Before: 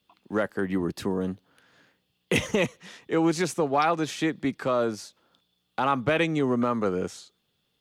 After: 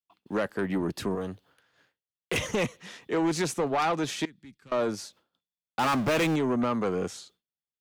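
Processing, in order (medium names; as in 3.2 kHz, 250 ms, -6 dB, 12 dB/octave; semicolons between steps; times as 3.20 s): saturation -22 dBFS, distortion -12 dB; 4.25–4.72 s: amplifier tone stack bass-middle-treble 6-0-2; 5.79–6.36 s: power-law waveshaper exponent 0.5; expander -53 dBFS; 1.15–2.41 s: peaking EQ 220 Hz -9 dB 0.93 oct; trim +1 dB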